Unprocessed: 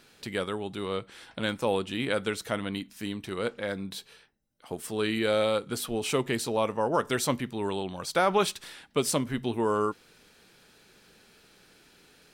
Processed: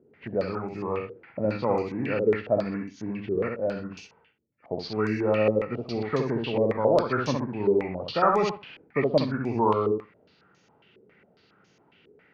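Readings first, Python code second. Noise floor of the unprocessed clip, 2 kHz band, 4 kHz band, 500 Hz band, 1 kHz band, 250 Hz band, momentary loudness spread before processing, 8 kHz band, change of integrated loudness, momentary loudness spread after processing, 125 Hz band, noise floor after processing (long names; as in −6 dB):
−59 dBFS, −1.5 dB, −6.5 dB, +4.5 dB, +2.5 dB, +3.0 dB, 10 LU, below −15 dB, +3.0 dB, 11 LU, +4.5 dB, −63 dBFS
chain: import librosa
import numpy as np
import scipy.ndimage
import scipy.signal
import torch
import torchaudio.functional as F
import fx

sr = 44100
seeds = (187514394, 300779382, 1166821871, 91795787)

p1 = fx.freq_compress(x, sr, knee_hz=1200.0, ratio=1.5)
p2 = scipy.signal.sosfilt(scipy.signal.butter(4, 82.0, 'highpass', fs=sr, output='sos'), p1)
p3 = np.sign(p2) * np.maximum(np.abs(p2) - 10.0 ** (-45.5 / 20.0), 0.0)
p4 = p2 + (p3 * 10.0 ** (-5.5 / 20.0))
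p5 = fx.tilt_eq(p4, sr, slope=-2.0)
p6 = p5 + fx.echo_feedback(p5, sr, ms=65, feedback_pct=21, wet_db=-3.5, dry=0)
p7 = fx.filter_held_lowpass(p6, sr, hz=7.3, low_hz=430.0, high_hz=6500.0)
y = p7 * 10.0 ** (-6.5 / 20.0)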